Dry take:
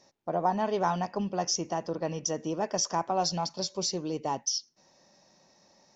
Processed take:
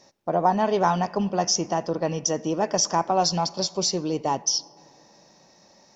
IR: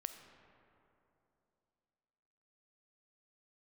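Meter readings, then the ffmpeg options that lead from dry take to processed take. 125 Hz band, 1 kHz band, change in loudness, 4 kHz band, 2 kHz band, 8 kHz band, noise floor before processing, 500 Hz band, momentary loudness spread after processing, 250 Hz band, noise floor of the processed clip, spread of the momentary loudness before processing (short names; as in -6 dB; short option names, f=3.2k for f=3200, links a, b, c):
+6.5 dB, +6.5 dB, +6.5 dB, +6.5 dB, +6.5 dB, n/a, -65 dBFS, +6.5 dB, 5 LU, +6.5 dB, -57 dBFS, 5 LU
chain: -filter_complex "[0:a]asplit=2[a][b];[1:a]atrim=start_sample=2205[c];[b][c]afir=irnorm=-1:irlink=0,volume=-9dB[d];[a][d]amix=inputs=2:normalize=0,volume=4.5dB"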